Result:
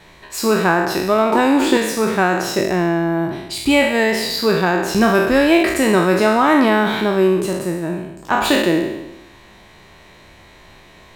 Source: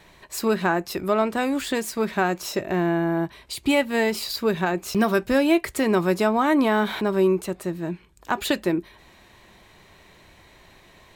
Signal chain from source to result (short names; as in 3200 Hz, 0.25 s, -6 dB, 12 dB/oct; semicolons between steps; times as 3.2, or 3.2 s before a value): spectral trails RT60 0.98 s; high shelf 10000 Hz -6 dB; 1.32–1.77 small resonant body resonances 370/900 Hz, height 16 dB; gain +4.5 dB